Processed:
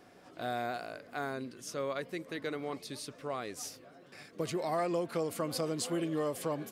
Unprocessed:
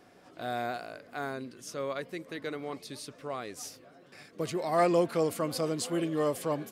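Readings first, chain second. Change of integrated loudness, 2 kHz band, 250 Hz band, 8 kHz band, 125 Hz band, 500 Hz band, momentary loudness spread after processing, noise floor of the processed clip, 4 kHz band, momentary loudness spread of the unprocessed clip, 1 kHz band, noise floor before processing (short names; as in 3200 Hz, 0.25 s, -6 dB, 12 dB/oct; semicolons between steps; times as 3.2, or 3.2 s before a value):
-4.0 dB, -2.0 dB, -3.5 dB, -1.0 dB, -3.0 dB, -4.5 dB, 10 LU, -58 dBFS, -1.5 dB, 15 LU, -4.0 dB, -58 dBFS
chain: compressor 4:1, threshold -30 dBFS, peak gain reduction 9 dB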